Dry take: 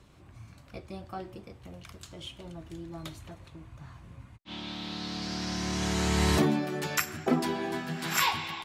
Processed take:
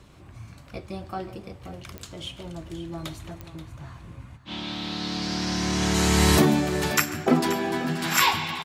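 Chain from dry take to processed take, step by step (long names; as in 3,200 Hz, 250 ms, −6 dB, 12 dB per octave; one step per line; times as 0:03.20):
0:05.94–0:06.60: high-shelf EQ 10,000 Hz +11 dB
multi-tap delay 143/531 ms −19.5/−13.5 dB
digital clicks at 0:01.98/0:03.41, −27 dBFS
level +6 dB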